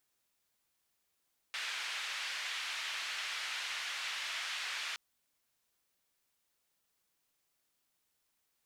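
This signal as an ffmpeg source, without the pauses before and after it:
ffmpeg -f lavfi -i "anoisesrc=color=white:duration=3.42:sample_rate=44100:seed=1,highpass=frequency=1700,lowpass=frequency=2900,volume=-22.9dB" out.wav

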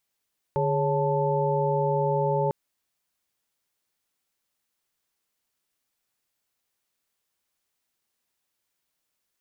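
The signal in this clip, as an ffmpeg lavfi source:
ffmpeg -f lavfi -i "aevalsrc='0.0447*(sin(2*PI*146.83*t)+sin(2*PI*415.3*t)+sin(2*PI*554.37*t)+sin(2*PI*880*t))':duration=1.95:sample_rate=44100" out.wav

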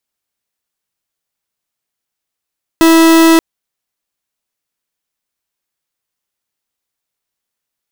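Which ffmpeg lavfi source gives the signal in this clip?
ffmpeg -f lavfi -i "aevalsrc='0.473*(2*lt(mod(327*t,1),0.43)-1)':duration=0.58:sample_rate=44100" out.wav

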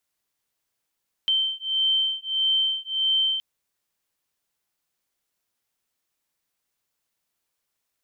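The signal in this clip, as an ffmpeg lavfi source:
ffmpeg -f lavfi -i "aevalsrc='0.0631*(sin(2*PI*3110*t)+sin(2*PI*3111.6*t))':duration=2.12:sample_rate=44100" out.wav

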